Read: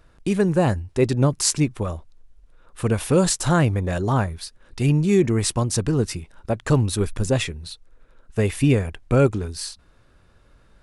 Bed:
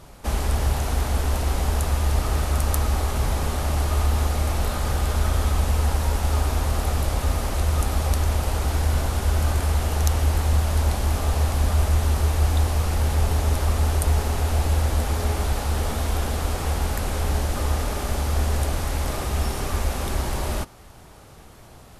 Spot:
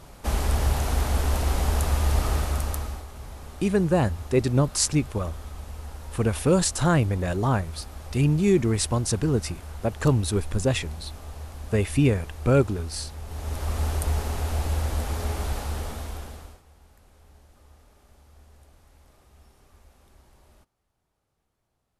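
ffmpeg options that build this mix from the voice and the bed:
-filter_complex "[0:a]adelay=3350,volume=-2.5dB[a];[1:a]volume=11dB,afade=t=out:st=2.27:d=0.78:silence=0.158489,afade=t=in:st=13.25:d=0.56:silence=0.251189,afade=t=out:st=15.55:d=1.07:silence=0.0501187[b];[a][b]amix=inputs=2:normalize=0"

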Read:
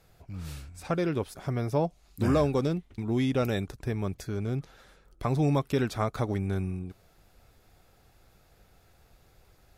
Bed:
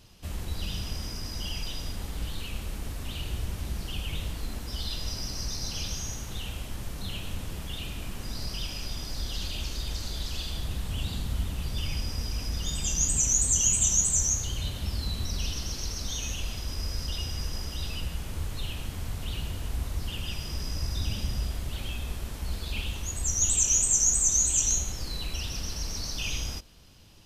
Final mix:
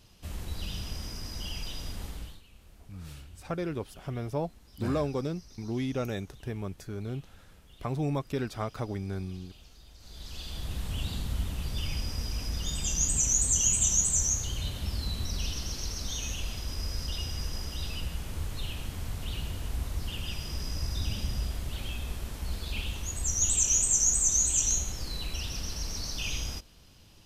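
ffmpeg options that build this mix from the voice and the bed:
-filter_complex "[0:a]adelay=2600,volume=-5dB[a];[1:a]volume=16dB,afade=t=out:st=2.06:d=0.35:silence=0.133352,afade=t=in:st=9.98:d=0.85:silence=0.112202[b];[a][b]amix=inputs=2:normalize=0"

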